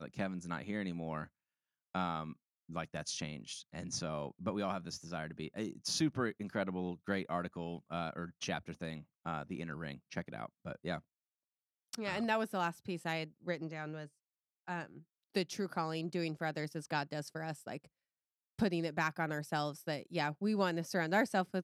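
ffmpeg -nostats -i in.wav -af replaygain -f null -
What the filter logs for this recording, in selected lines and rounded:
track_gain = +18.4 dB
track_peak = 0.080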